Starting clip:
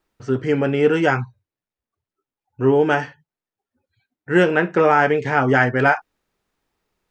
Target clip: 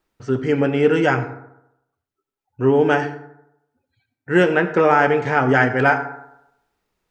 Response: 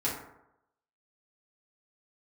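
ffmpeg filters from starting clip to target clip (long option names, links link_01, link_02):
-filter_complex "[0:a]asplit=2[link_01][link_02];[1:a]atrim=start_sample=2205,adelay=79[link_03];[link_02][link_03]afir=irnorm=-1:irlink=0,volume=-19.5dB[link_04];[link_01][link_04]amix=inputs=2:normalize=0"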